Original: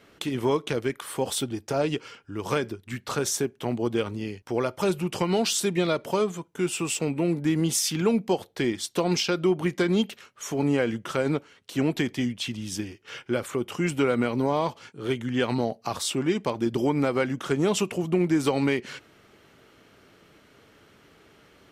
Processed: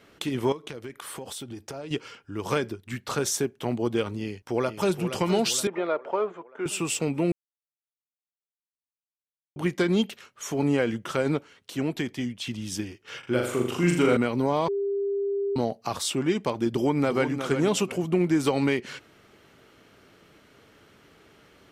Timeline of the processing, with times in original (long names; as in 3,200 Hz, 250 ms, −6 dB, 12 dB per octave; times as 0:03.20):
0:00.52–0:01.91: downward compressor, threshold −34 dBFS
0:04.20–0:05.01: delay throw 470 ms, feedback 55%, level −9.5 dB
0:05.67–0:06.66: flat-topped band-pass 850 Hz, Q 0.59
0:07.32–0:09.56: silence
0:11.75–0:12.47: clip gain −3.5 dB
0:13.19–0:14.17: flutter between parallel walls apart 6.9 metres, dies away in 0.64 s
0:14.68–0:15.56: beep over 399 Hz −24 dBFS
0:16.70–0:17.32: delay throw 360 ms, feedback 25%, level −8.5 dB